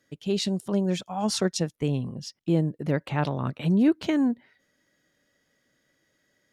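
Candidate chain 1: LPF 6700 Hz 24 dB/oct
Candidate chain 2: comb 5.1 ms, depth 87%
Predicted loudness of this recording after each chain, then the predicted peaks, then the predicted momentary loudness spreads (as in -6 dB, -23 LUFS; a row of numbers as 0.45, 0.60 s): -26.5, -24.0 LUFS; -12.0, -8.5 dBFS; 7, 8 LU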